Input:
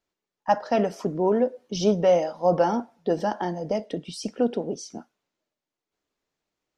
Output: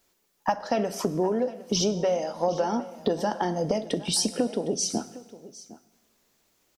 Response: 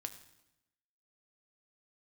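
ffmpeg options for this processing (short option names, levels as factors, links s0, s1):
-filter_complex "[0:a]highshelf=f=6800:g=11,acompressor=threshold=0.02:ratio=12,aecho=1:1:759:0.126,asplit=2[s0][s1];[1:a]atrim=start_sample=2205,asetrate=31752,aresample=44100,highshelf=f=6700:g=7[s2];[s1][s2]afir=irnorm=-1:irlink=0,volume=0.841[s3];[s0][s3]amix=inputs=2:normalize=0,volume=2.24"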